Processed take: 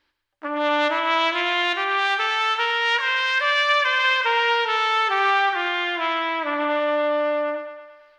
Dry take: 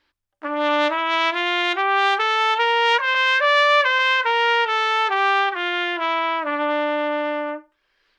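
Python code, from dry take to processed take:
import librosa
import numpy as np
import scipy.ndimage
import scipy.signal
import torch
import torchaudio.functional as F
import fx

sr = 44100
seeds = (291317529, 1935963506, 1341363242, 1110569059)

y = fx.peak_eq(x, sr, hz=620.0, db=-7.0, octaves=1.4, at=(1.73, 4.04))
y = fx.echo_thinned(y, sr, ms=113, feedback_pct=62, hz=350.0, wet_db=-8)
y = y * 10.0 ** (-1.5 / 20.0)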